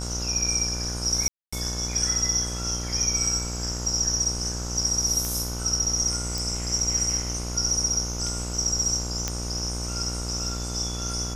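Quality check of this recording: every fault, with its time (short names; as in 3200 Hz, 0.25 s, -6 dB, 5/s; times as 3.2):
buzz 60 Hz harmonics 25 -32 dBFS
1.28–1.52 gap 0.245 s
5.25 pop
6.38 pop
9.28 pop -11 dBFS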